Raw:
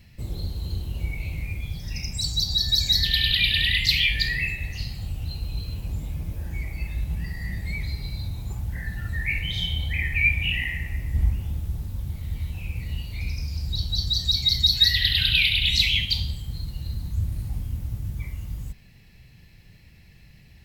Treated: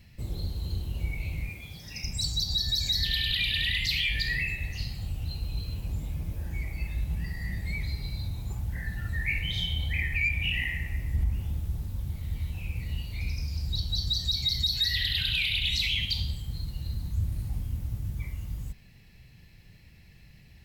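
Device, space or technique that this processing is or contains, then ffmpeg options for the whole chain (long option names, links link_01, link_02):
soft clipper into limiter: -filter_complex "[0:a]asettb=1/sr,asplit=3[link_01][link_02][link_03];[link_01]atrim=end=1.494[link_04];[link_02]atrim=start=1.49:end=2.04,asetpts=PTS-STARTPTS,afade=type=in:duration=0.004:curve=qsin,afade=type=out:start_time=0.546:duration=0.004:curve=qsin,highpass=frequency=260:poles=1[link_05];[link_03]atrim=start=2.036[link_06];[link_04][link_05]acrossfade=duration=0.004:curve1=hsin:curve2=qsin[link_07];[link_07][link_06]acrossfade=duration=0.004:curve1=qsin:curve2=hsin,asoftclip=type=tanh:threshold=-8.5dB,alimiter=limit=-16.5dB:level=0:latency=1:release=88,volume=-2.5dB"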